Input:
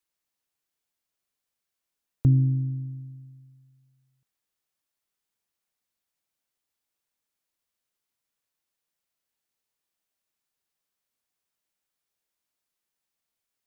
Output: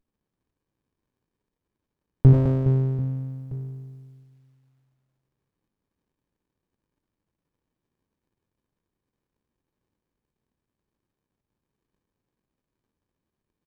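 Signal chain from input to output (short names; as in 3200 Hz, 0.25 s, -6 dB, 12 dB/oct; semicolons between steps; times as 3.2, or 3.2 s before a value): notches 50/100 Hz; reverse bouncing-ball echo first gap 80 ms, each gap 1.6×, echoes 5; running maximum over 65 samples; gain +7 dB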